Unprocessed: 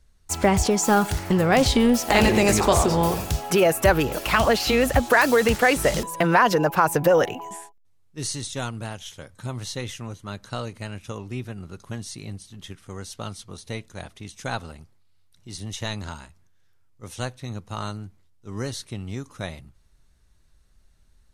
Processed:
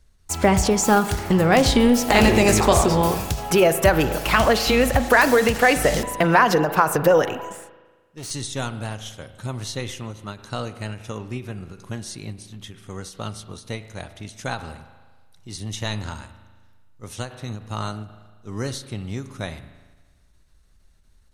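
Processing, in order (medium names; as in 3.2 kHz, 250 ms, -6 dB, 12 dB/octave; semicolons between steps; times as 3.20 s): 7.52–8.31 s: valve stage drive 34 dB, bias 0.5; reverberation RT60 1.4 s, pre-delay 37 ms, DRR 11.5 dB; endings held to a fixed fall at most 160 dB/s; trim +2 dB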